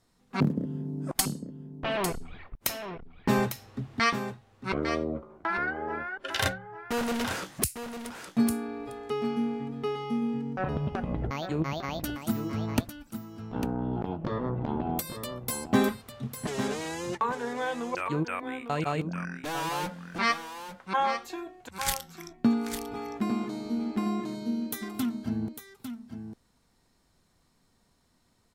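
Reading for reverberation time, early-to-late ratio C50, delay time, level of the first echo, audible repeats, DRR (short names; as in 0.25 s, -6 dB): none, none, 0.851 s, -9.0 dB, 1, none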